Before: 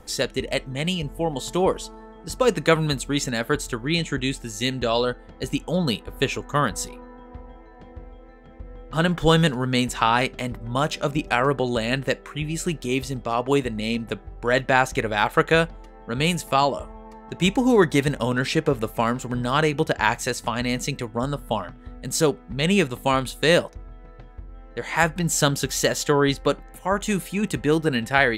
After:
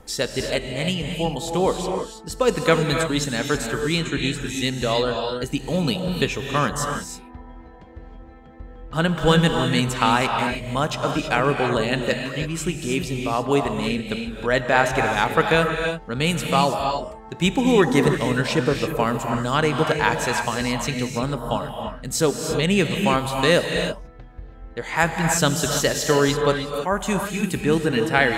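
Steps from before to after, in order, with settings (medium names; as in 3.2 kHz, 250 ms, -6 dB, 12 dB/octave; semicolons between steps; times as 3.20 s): gated-style reverb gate 350 ms rising, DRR 3.5 dB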